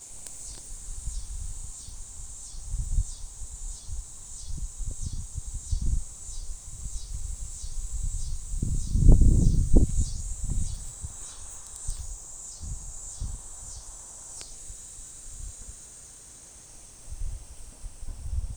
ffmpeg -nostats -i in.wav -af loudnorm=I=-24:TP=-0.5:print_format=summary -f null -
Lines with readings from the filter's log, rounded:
Input Integrated:    -33.3 LUFS
Input True Peak:      -2.3 dBTP
Input LRA:            14.7 LU
Input Threshold:     -44.0 LUFS